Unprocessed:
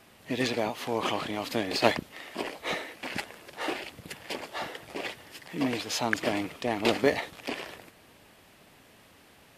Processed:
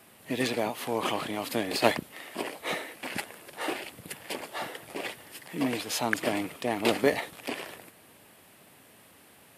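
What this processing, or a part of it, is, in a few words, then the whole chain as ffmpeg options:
budget condenser microphone: -af "highpass=93,highshelf=frequency=7700:width_type=q:width=1.5:gain=6"

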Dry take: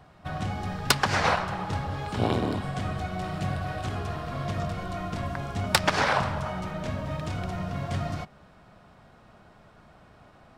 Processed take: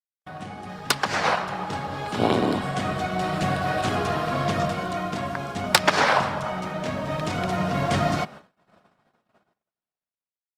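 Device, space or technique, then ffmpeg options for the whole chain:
video call: -af "highpass=180,dynaudnorm=framelen=270:gausssize=9:maxgain=14dB,agate=range=-50dB:threshold=-38dB:ratio=16:detection=peak,volume=-2dB" -ar 48000 -c:a libopus -b:a 32k

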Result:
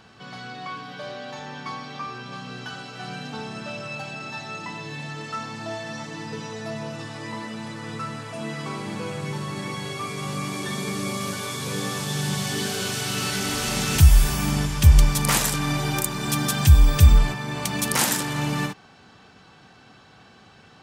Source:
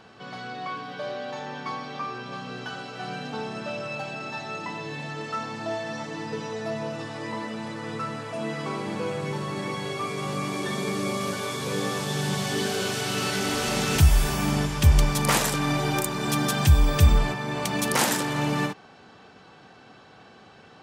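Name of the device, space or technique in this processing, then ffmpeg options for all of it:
smiley-face EQ: -af "lowshelf=frequency=120:gain=6,equalizer=frequency=490:width_type=o:width=1.5:gain=-4.5,highshelf=frequency=5400:gain=5.5"

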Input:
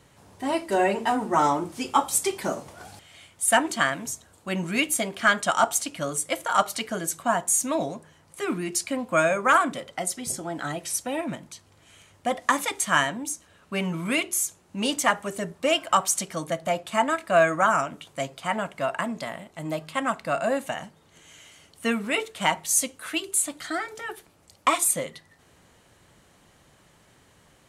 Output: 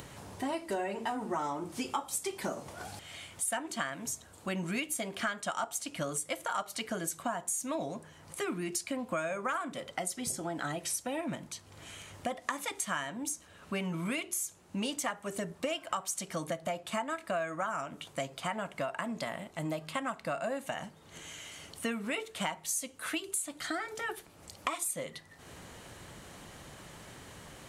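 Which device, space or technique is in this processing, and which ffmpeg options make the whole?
upward and downward compression: -af "acompressor=mode=upward:threshold=-40dB:ratio=2.5,acompressor=threshold=-32dB:ratio=6"

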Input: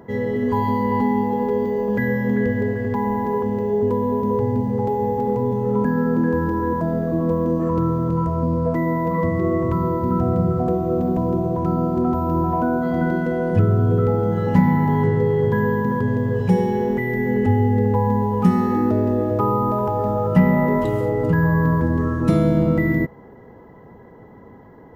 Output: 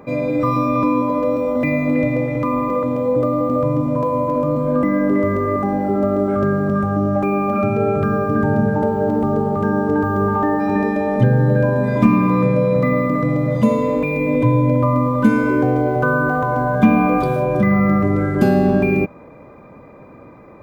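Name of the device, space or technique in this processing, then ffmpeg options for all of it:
nightcore: -af "asetrate=53361,aresample=44100,volume=2.5dB"

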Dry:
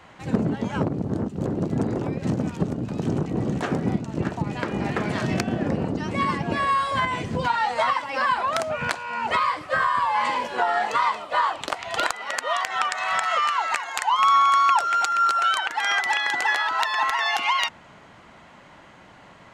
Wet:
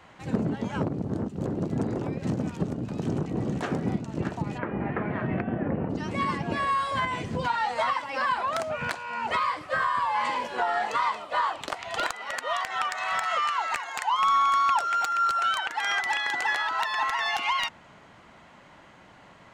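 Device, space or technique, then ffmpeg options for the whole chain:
saturation between pre-emphasis and de-emphasis: -filter_complex "[0:a]highshelf=frequency=2500:gain=10,asoftclip=type=tanh:threshold=-8dB,highshelf=frequency=2500:gain=-10,asplit=3[link_01][link_02][link_03];[link_01]afade=type=out:start_time=4.57:duration=0.02[link_04];[link_02]lowpass=frequency=2200:width=0.5412,lowpass=frequency=2200:width=1.3066,afade=type=in:start_time=4.57:duration=0.02,afade=type=out:start_time=5.89:duration=0.02[link_05];[link_03]afade=type=in:start_time=5.89:duration=0.02[link_06];[link_04][link_05][link_06]amix=inputs=3:normalize=0,volume=-3.5dB"

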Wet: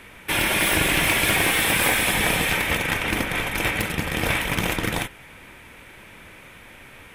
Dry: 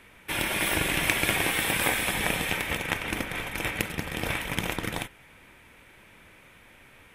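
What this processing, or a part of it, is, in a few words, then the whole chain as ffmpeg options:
saturation between pre-emphasis and de-emphasis: -af "highshelf=frequency=4800:gain=7,asoftclip=type=tanh:threshold=-20dB,highshelf=frequency=4800:gain=-7,volume=8.5dB"

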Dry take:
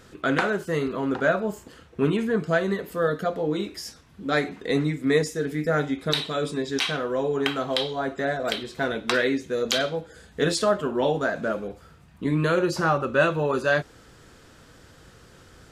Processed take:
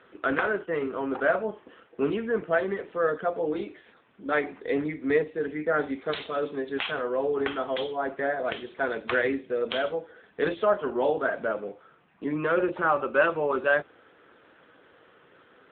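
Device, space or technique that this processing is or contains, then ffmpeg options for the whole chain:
telephone: -af "highpass=330,lowpass=3200" -ar 8000 -c:a libopencore_amrnb -b:a 7950

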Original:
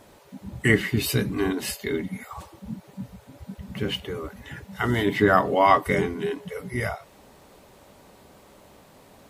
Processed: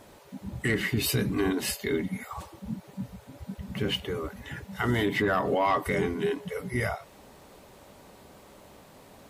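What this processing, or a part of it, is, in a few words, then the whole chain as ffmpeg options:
soft clipper into limiter: -af "asoftclip=type=tanh:threshold=-9dB,alimiter=limit=-17dB:level=0:latency=1:release=79"

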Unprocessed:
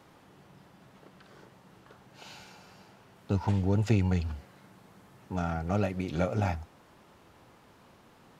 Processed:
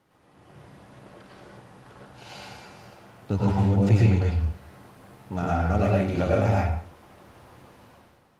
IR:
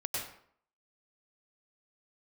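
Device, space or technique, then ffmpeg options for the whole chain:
speakerphone in a meeting room: -filter_complex "[1:a]atrim=start_sample=2205[link_01];[0:a][link_01]afir=irnorm=-1:irlink=0,dynaudnorm=framelen=100:gausssize=9:maxgain=11.5dB,volume=-6.5dB" -ar 48000 -c:a libopus -b:a 32k

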